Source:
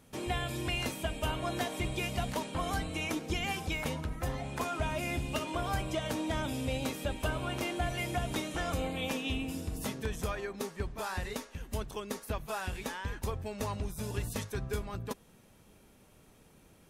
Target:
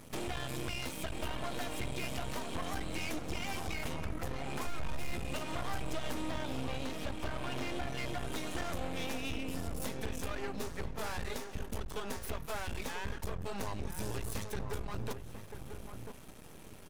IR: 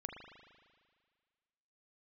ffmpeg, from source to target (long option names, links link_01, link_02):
-filter_complex "[0:a]asettb=1/sr,asplit=3[link_01][link_02][link_03];[link_01]atrim=end=6.314[link_04];[link_02]atrim=start=6.31:end=8.18,asetpts=PTS-STARTPTS,afade=type=in:duration=0.004:curve=qsin,afade=type=out:start_time=1.866:duration=0.004:curve=qsin,acrossover=split=6000[link_05][link_06];[link_06]acompressor=threshold=-57dB:ratio=4:attack=1:release=60[link_07];[link_05][link_07]amix=inputs=2:normalize=0[link_08];[link_03]atrim=start=8.176[link_09];[link_04][link_08]acrossfade=duration=0.004:curve1=hsin:curve2=qsin[link_10];[link_10][link_09]acrossfade=duration=0.004:curve1=qsin:curve2=hsin,aeval=exprs='max(val(0),0)':channel_layout=same,acompressor=threshold=-44dB:ratio=6,asplit=3[link_11][link_12][link_13];[link_11]afade=type=out:start_time=4.65:duration=0.02[link_14];[link_12]asubboost=boost=3.5:cutoff=110,afade=type=in:start_time=4.65:duration=0.02,afade=type=out:start_time=5.12:duration=0.02[link_15];[link_13]afade=type=in:start_time=5.12:duration=0.02[link_16];[link_14][link_15][link_16]amix=inputs=3:normalize=0,asoftclip=type=hard:threshold=-40dB,asplit=2[link_17][link_18];[link_18]adelay=991.3,volume=-7dB,highshelf=frequency=4000:gain=-22.3[link_19];[link_17][link_19]amix=inputs=2:normalize=0,volume=11dB"